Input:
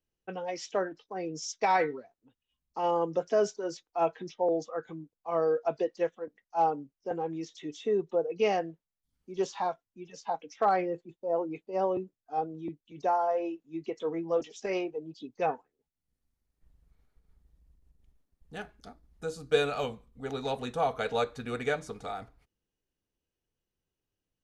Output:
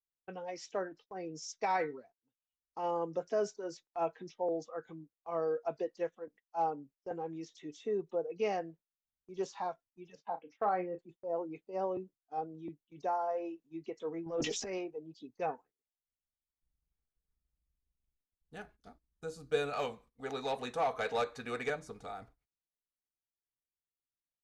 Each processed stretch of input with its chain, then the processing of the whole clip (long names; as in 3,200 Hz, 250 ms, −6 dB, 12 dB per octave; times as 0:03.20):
0:10.15–0:10.99: band-pass filter 110–2,400 Hz + double-tracking delay 33 ms −11 dB
0:14.26–0:14.78: transient designer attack −7 dB, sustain +10 dB + low-shelf EQ 130 Hz +7.5 dB + level that may fall only so fast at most 34 dB per second
0:19.73–0:21.70: notch filter 1,400 Hz, Q 19 + mid-hump overdrive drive 13 dB, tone 6,500 Hz, clips at −16 dBFS
whole clip: noise gate −52 dBFS, range −15 dB; dynamic equaliser 3,200 Hz, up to −5 dB, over −58 dBFS, Q 3.1; level −6.5 dB